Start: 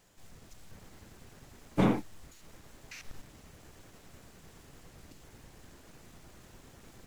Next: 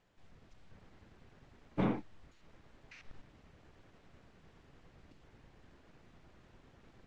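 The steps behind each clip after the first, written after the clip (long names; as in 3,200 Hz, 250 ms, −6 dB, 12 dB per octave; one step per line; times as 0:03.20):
low-pass filter 3,400 Hz 12 dB per octave
level −6.5 dB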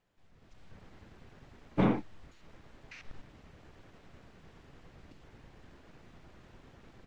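automatic gain control gain up to 10.5 dB
level −5 dB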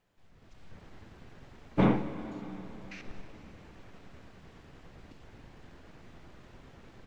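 dense smooth reverb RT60 4.4 s, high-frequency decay 0.9×, DRR 9.5 dB
level +2.5 dB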